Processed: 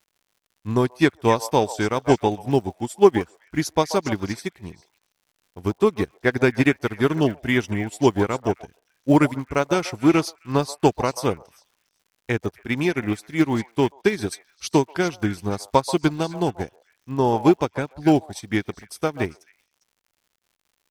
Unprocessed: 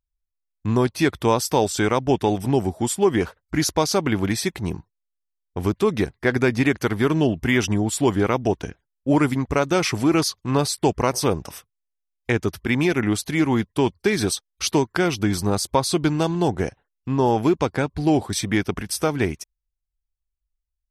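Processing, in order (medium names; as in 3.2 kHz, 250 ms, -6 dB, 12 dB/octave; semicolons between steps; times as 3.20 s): repeats whose band climbs or falls 134 ms, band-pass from 750 Hz, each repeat 1.4 oct, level -4 dB; crackle 140 per s -31 dBFS; upward expansion 2.5:1, over -30 dBFS; trim +6 dB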